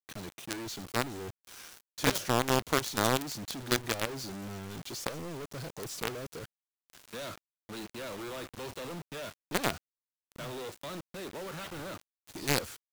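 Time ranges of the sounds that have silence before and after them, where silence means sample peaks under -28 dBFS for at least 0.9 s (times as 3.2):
2.04–4.05
5.07–6.08
9.55–9.7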